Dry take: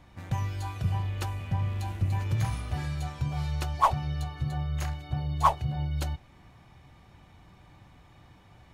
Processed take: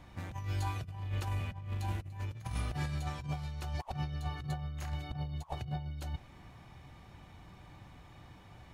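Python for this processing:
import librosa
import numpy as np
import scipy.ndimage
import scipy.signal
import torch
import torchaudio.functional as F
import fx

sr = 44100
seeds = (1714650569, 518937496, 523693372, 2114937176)

y = fx.over_compress(x, sr, threshold_db=-33.0, ratio=-0.5)
y = F.gain(torch.from_numpy(y), -3.5).numpy()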